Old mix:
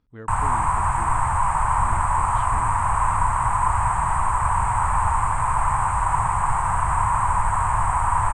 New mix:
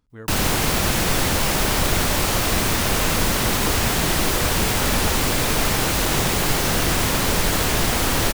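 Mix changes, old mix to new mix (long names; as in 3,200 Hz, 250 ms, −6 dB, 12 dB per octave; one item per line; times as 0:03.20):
background: remove drawn EQ curve 110 Hz 0 dB, 260 Hz −23 dB, 520 Hz −20 dB, 980 Hz +14 dB, 1,400 Hz −1 dB, 2,400 Hz −12 dB, 3,700 Hz −29 dB, 5,700 Hz −26 dB, 8,400 Hz +12 dB, 15,000 Hz −26 dB
master: remove high-frequency loss of the air 130 metres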